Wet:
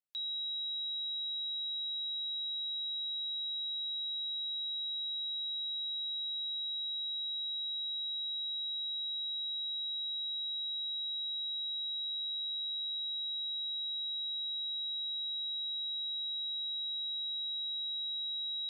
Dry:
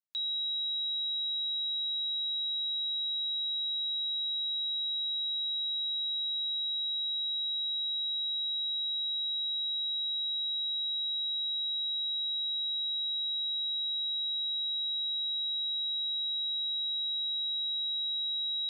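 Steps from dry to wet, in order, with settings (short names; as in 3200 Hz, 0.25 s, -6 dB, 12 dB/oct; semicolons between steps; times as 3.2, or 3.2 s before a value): 12.02–12.99 doubler 15 ms -4.5 dB; gain -4.5 dB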